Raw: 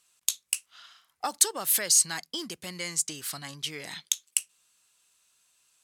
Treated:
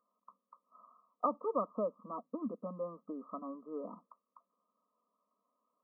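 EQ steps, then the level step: brick-wall FIR band-pass 190–1300 Hz; bass shelf 380 Hz +5.5 dB; static phaser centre 540 Hz, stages 8; +3.5 dB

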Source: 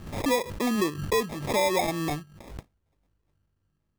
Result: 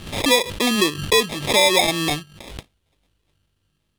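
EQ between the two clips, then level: peaking EQ 460 Hz +2.5 dB 1.5 oct; peaking EQ 3.3 kHz +14 dB 1.3 oct; peaking EQ 10 kHz +8.5 dB 0.95 oct; +3.5 dB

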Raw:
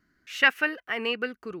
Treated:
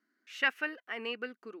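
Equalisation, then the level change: brick-wall FIR high-pass 200 Hz; treble shelf 11 kHz -7.5 dB; -8.5 dB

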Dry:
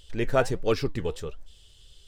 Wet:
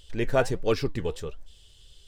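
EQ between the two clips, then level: band-stop 1.3 kHz, Q 24; 0.0 dB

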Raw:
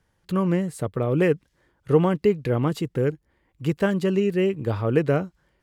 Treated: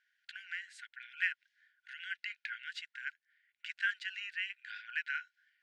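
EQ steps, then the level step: brick-wall FIR high-pass 1.4 kHz; distance through air 120 m; treble shelf 4.8 kHz -9 dB; +2.0 dB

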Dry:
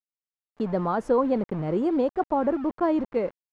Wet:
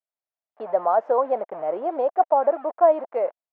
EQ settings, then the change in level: resonant high-pass 660 Hz, resonance Q 4.8; low-pass 2.3 kHz 12 dB/octave; distance through air 70 m; -1.0 dB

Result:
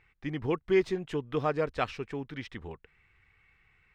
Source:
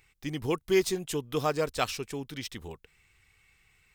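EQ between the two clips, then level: dynamic bell 1.3 kHz, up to -3 dB, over -38 dBFS, Q 0.96; FFT filter 710 Hz 0 dB, 1.8 kHz +3 dB, 13 kHz -30 dB; 0.0 dB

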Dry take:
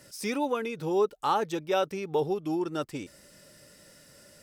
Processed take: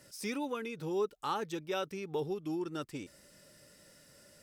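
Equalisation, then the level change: dynamic bell 690 Hz, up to -7 dB, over -41 dBFS, Q 1.3; -5.0 dB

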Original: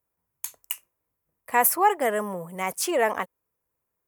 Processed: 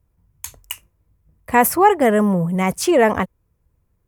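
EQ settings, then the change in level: RIAA curve playback; bass shelf 260 Hz +11 dB; treble shelf 2.5 kHz +12 dB; +3.5 dB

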